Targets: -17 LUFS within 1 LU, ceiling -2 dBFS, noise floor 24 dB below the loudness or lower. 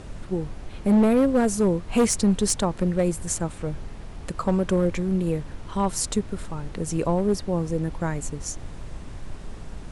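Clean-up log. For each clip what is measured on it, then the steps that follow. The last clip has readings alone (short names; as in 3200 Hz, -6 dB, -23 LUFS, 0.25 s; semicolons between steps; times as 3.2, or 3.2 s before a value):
clipped 1.4%; flat tops at -14.0 dBFS; noise floor -39 dBFS; noise floor target -49 dBFS; loudness -24.5 LUFS; peak -14.0 dBFS; loudness target -17.0 LUFS
-> clip repair -14 dBFS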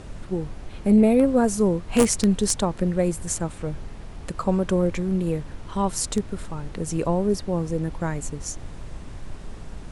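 clipped 0.0%; noise floor -39 dBFS; noise floor target -48 dBFS
-> noise print and reduce 9 dB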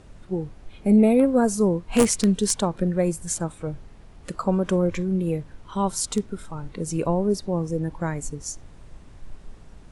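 noise floor -47 dBFS; noise floor target -48 dBFS
-> noise print and reduce 6 dB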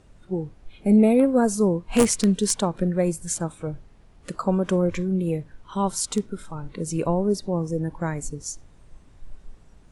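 noise floor -52 dBFS; loudness -23.5 LUFS; peak -5.0 dBFS; loudness target -17.0 LUFS
-> gain +6.5 dB; limiter -2 dBFS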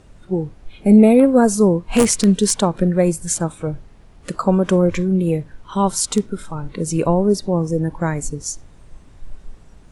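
loudness -17.5 LUFS; peak -2.0 dBFS; noise floor -46 dBFS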